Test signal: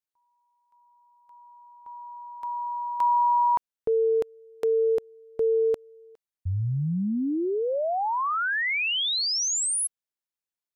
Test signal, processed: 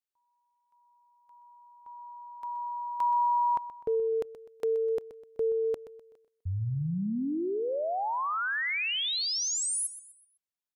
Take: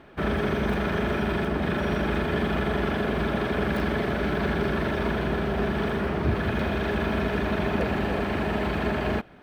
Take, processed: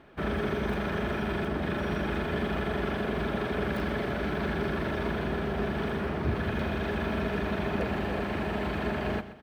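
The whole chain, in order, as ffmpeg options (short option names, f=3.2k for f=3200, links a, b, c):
-af "aecho=1:1:126|252|378|504:0.2|0.0758|0.0288|0.0109,volume=-4.5dB"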